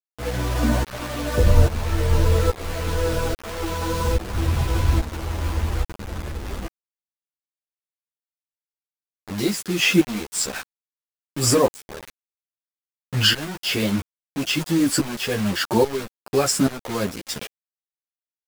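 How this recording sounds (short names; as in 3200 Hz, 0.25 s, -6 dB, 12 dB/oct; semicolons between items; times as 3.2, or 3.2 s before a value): tremolo saw up 1.2 Hz, depth 90%; a quantiser's noise floor 6-bit, dither none; a shimmering, thickened sound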